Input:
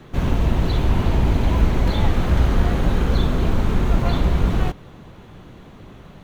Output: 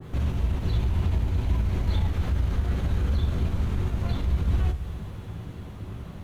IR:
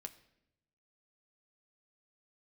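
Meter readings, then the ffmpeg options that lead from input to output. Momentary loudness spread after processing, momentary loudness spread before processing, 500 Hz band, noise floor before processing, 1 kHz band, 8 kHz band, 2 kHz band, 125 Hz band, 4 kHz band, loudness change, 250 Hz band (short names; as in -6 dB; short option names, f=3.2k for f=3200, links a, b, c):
12 LU, 2 LU, -12.0 dB, -43 dBFS, -12.5 dB, n/a, -11.0 dB, -4.5 dB, -10.0 dB, -6.5 dB, -10.0 dB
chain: -filter_complex "[0:a]acompressor=threshold=-26dB:ratio=4,equalizer=f=76:w=0.97:g=14,alimiter=limit=-16dB:level=0:latency=1:release=18,acrusher=bits=9:mix=0:aa=0.000001,bandreject=f=50:t=h:w=6,bandreject=f=100:t=h:w=6[a];[1:a]atrim=start_sample=2205,asetrate=26019,aresample=44100[b];[a][b]afir=irnorm=-1:irlink=0,adynamicequalizer=threshold=0.00447:dfrequency=1600:dqfactor=0.7:tfrequency=1600:tqfactor=0.7:attack=5:release=100:ratio=0.375:range=2:mode=boostabove:tftype=highshelf"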